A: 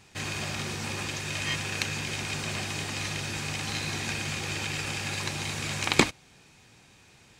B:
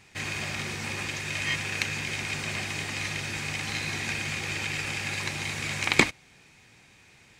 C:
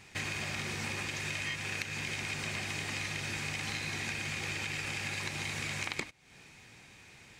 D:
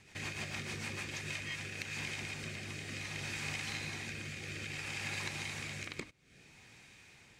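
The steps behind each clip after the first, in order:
bell 2100 Hz +7 dB 0.58 oct; gain -1.5 dB
compressor 12:1, threshold -34 dBFS, peak gain reduction 21.5 dB; gain +1 dB
rotary speaker horn 6.7 Hz, later 0.6 Hz, at 1.08; gain -2 dB

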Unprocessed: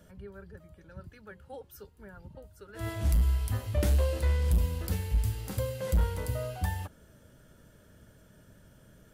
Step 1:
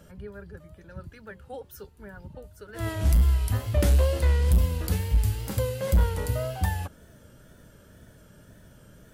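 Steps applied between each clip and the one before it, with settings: wow and flutter 62 cents; gain +5 dB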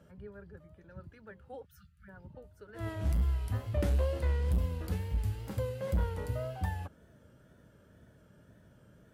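HPF 61 Hz; spectral delete 1.66–2.08, 200–1200 Hz; high shelf 3500 Hz -11 dB; gain -6.5 dB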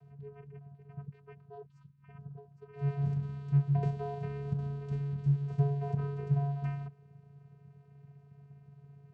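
vocoder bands 8, square 141 Hz; gain +6.5 dB

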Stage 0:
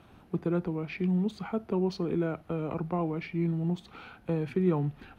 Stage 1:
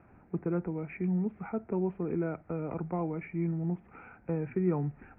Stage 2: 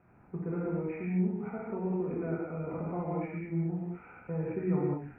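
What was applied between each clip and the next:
steep low-pass 2400 Hz 72 dB/oct; notch 1100 Hz, Q 12; gain -2.5 dB
non-linear reverb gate 0.25 s flat, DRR -5.5 dB; gain -7 dB

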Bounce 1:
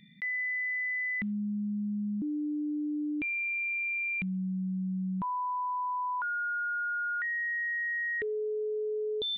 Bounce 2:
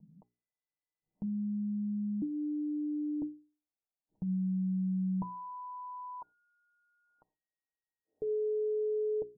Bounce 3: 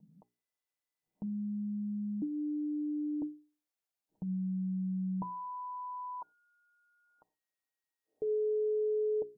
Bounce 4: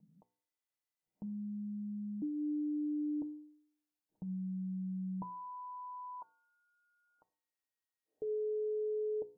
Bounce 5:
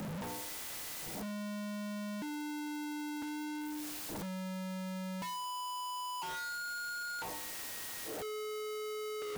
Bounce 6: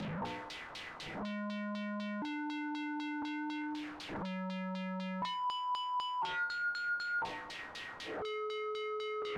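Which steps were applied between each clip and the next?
steep low-pass 950 Hz 72 dB/oct; notches 60/120/180/240/300/360/420 Hz; comb 6.5 ms, depth 46%
low shelf 180 Hz -10.5 dB; gain +2.5 dB
resonator 100 Hz, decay 0.65 s, harmonics odd, mix 60%; gain +3 dB
infinite clipping; gain +1 dB
LFO low-pass saw down 4 Hz 950–4200 Hz

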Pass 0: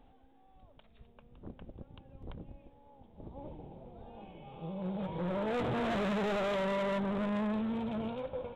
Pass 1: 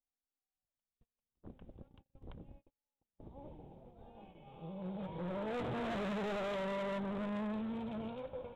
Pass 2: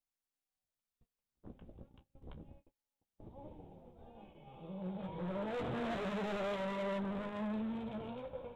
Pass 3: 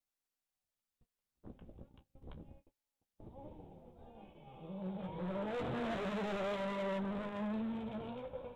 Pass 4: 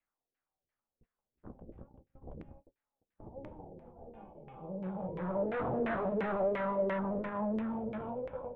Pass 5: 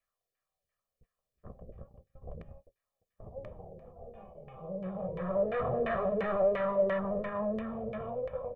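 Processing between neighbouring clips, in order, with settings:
gate -50 dBFS, range -38 dB; gain -5.5 dB
flange 0.3 Hz, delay 9 ms, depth 8.2 ms, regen -38%; gain +3.5 dB
wow and flutter 27 cents
LFO low-pass saw down 2.9 Hz 380–2200 Hz; gain +2.5 dB
comb 1.7 ms, depth 80%

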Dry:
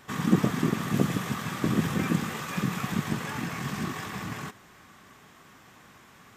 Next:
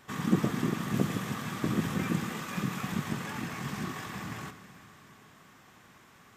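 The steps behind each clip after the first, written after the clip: plate-style reverb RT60 3.8 s, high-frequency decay 1×, DRR 11 dB; gain -4 dB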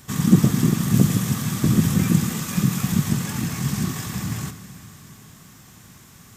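tone controls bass +14 dB, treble +15 dB; gain +2.5 dB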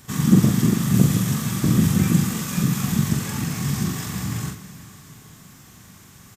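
doubler 42 ms -4.5 dB; gain -1 dB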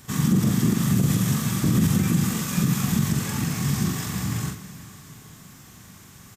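limiter -11.5 dBFS, peak gain reduction 9 dB

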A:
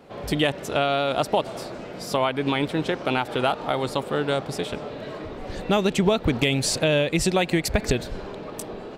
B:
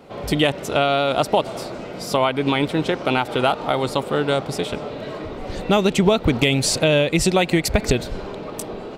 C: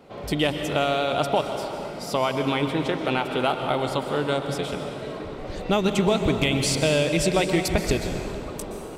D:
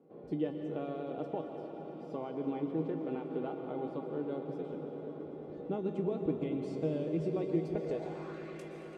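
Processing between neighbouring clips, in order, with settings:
notch 1700 Hz, Q 14; gain +4 dB
plate-style reverb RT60 2.6 s, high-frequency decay 0.65×, pre-delay 0.11 s, DRR 5.5 dB; gain -5 dB
band-pass sweep 320 Hz -> 2000 Hz, 7.7–8.49; resonator 160 Hz, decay 0.22 s, harmonics odd, mix 80%; swelling echo 0.112 s, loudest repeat 5, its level -17 dB; gain +5 dB

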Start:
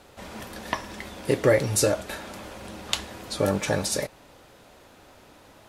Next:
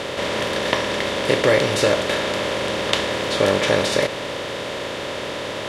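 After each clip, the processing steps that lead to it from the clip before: per-bin compression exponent 0.4; EQ curve 110 Hz 0 dB, 3300 Hz +8 dB, 10000 Hz -9 dB; gain -3.5 dB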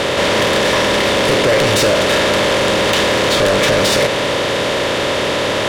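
in parallel at +2.5 dB: limiter -9.5 dBFS, peak gain reduction 7.5 dB; on the sum: soft clip -15.5 dBFS, distortion -8 dB; gain +5.5 dB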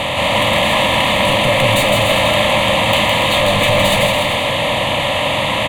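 fixed phaser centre 1500 Hz, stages 6; on a send: bouncing-ball echo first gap 0.16 s, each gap 0.8×, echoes 5; on the sum: gain +2 dB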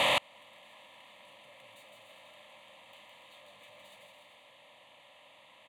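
HPF 580 Hz 6 dB/oct; flipped gate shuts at -10 dBFS, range -35 dB; gain -5 dB

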